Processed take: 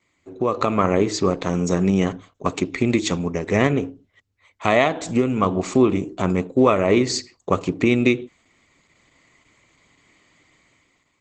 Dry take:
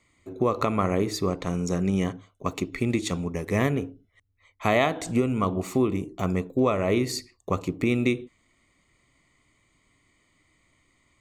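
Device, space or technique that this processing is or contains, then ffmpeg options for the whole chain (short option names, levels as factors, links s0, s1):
video call: -af "highpass=f=150:p=1,dynaudnorm=f=130:g=9:m=3.16" -ar 48000 -c:a libopus -b:a 12k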